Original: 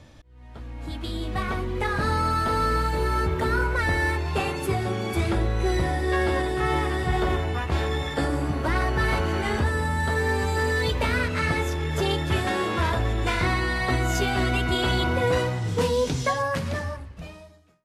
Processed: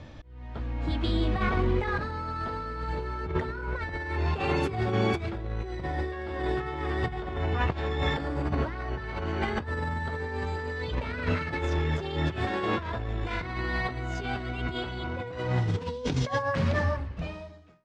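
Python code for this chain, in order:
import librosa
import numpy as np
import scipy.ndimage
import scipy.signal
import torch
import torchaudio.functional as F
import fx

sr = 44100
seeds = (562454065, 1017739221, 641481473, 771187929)

y = fx.over_compress(x, sr, threshold_db=-28.0, ratio=-0.5)
y = fx.air_absorb(y, sr, metres=140.0)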